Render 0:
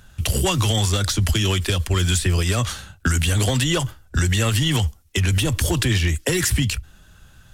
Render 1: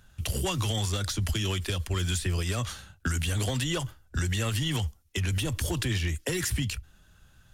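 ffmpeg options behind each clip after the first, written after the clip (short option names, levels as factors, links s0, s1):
-af "bandreject=f=7900:w=26,volume=0.355"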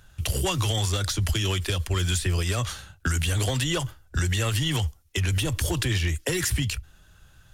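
-af "equalizer=f=220:t=o:w=0.45:g=-6.5,volume=1.58"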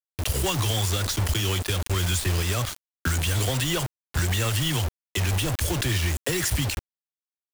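-af "acrusher=bits=4:mix=0:aa=0.000001"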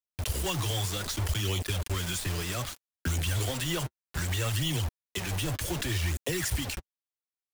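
-af "flanger=delay=0.3:depth=6.6:regen=-33:speed=0.64:shape=sinusoidal,volume=0.794"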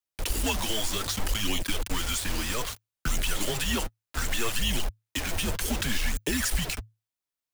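-af "afreqshift=-110,volume=1.5"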